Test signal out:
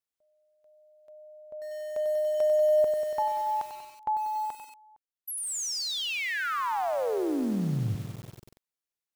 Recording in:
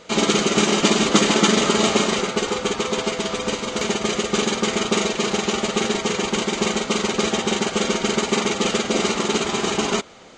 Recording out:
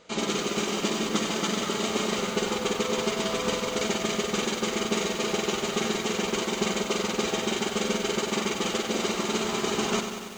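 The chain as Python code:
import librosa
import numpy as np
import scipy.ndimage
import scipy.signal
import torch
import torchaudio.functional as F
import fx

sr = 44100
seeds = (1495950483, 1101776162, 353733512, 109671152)

y = fx.rider(x, sr, range_db=4, speed_s=0.5)
y = fx.echo_crushed(y, sr, ms=95, feedback_pct=80, bits=6, wet_db=-8.0)
y = F.gain(torch.from_numpy(y), -8.0).numpy()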